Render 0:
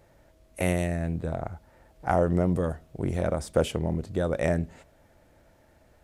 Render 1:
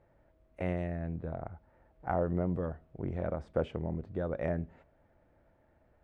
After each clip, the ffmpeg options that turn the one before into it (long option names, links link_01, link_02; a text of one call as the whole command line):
ffmpeg -i in.wav -af "lowpass=1900,volume=-7.5dB" out.wav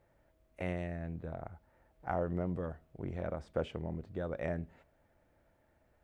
ffmpeg -i in.wav -af "highshelf=frequency=2500:gain=10.5,volume=-4dB" out.wav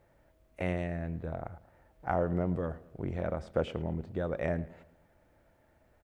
ffmpeg -i in.wav -filter_complex "[0:a]asplit=2[link_01][link_02];[link_02]adelay=110,lowpass=frequency=3700:poles=1,volume=-18.5dB,asplit=2[link_03][link_04];[link_04]adelay=110,lowpass=frequency=3700:poles=1,volume=0.47,asplit=2[link_05][link_06];[link_06]adelay=110,lowpass=frequency=3700:poles=1,volume=0.47,asplit=2[link_07][link_08];[link_08]adelay=110,lowpass=frequency=3700:poles=1,volume=0.47[link_09];[link_01][link_03][link_05][link_07][link_09]amix=inputs=5:normalize=0,volume=4.5dB" out.wav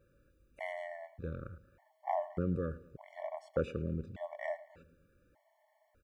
ffmpeg -i in.wav -af "afftfilt=real='re*gt(sin(2*PI*0.84*pts/sr)*(1-2*mod(floor(b*sr/1024/580),2)),0)':imag='im*gt(sin(2*PI*0.84*pts/sr)*(1-2*mod(floor(b*sr/1024/580),2)),0)':win_size=1024:overlap=0.75,volume=-1.5dB" out.wav